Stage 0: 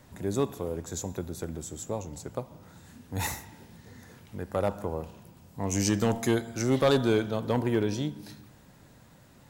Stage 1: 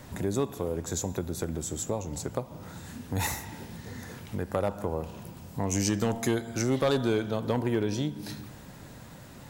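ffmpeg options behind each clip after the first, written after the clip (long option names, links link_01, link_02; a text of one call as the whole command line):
ffmpeg -i in.wav -af "acompressor=threshold=-40dB:ratio=2,volume=8.5dB" out.wav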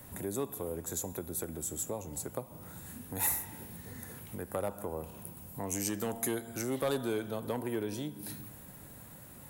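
ffmpeg -i in.wav -filter_complex "[0:a]highshelf=frequency=8000:width_type=q:width=1.5:gain=12,acrossover=split=220|3200[link_01][link_02][link_03];[link_01]alimiter=level_in=9.5dB:limit=-24dB:level=0:latency=1:release=266,volume=-9.5dB[link_04];[link_04][link_02][link_03]amix=inputs=3:normalize=0,volume=-6dB" out.wav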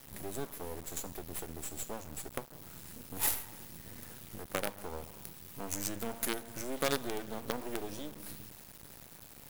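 ffmpeg -i in.wav -af "acrusher=bits=5:dc=4:mix=0:aa=0.000001" out.wav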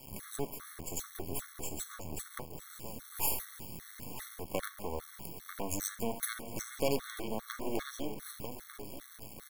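ffmpeg -i in.wav -filter_complex "[0:a]asplit=2[link_01][link_02];[link_02]adelay=944,lowpass=frequency=3700:poles=1,volume=-10.5dB,asplit=2[link_03][link_04];[link_04]adelay=944,lowpass=frequency=3700:poles=1,volume=0.29,asplit=2[link_05][link_06];[link_06]adelay=944,lowpass=frequency=3700:poles=1,volume=0.29[link_07];[link_01][link_03][link_05][link_07]amix=inputs=4:normalize=0,volume=23dB,asoftclip=hard,volume=-23dB,afftfilt=real='re*gt(sin(2*PI*2.5*pts/sr)*(1-2*mod(floor(b*sr/1024/1100),2)),0)':imag='im*gt(sin(2*PI*2.5*pts/sr)*(1-2*mod(floor(b*sr/1024/1100),2)),0)':win_size=1024:overlap=0.75,volume=4dB" out.wav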